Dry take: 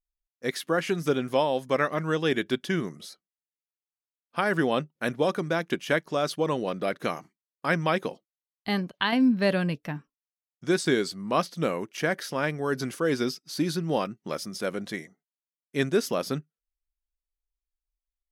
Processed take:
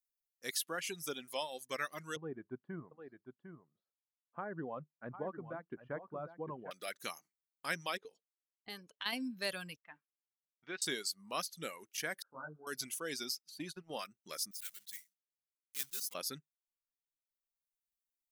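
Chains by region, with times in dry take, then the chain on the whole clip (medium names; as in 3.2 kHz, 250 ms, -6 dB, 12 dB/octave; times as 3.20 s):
2.16–6.71 s: low-pass 1.2 kHz 24 dB/octave + peaking EQ 110 Hz +10.5 dB 1.1 oct + delay 753 ms -8 dB
7.97–9.06 s: peaking EQ 440 Hz +12 dB 0.21 oct + compression 2.5:1, threshold -33 dBFS + level-controlled noise filter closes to 810 Hz, open at -31 dBFS
9.76–10.82 s: companding laws mixed up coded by A + low-pass 2.7 kHz 24 dB/octave + bass shelf 450 Hz -8 dB
12.22–12.67 s: brick-wall FIR low-pass 1.6 kHz + detune thickener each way 39 cents
13.49–13.99 s: gate -30 dBFS, range -28 dB + tone controls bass +1 dB, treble -8 dB + upward compressor, threshold -28 dBFS
14.51–16.15 s: block-companded coder 3-bit + amplifier tone stack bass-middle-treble 5-5-5
whole clip: pre-emphasis filter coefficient 0.9; reverb removal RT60 1.4 s; bass shelf 150 Hz -5 dB; trim +2 dB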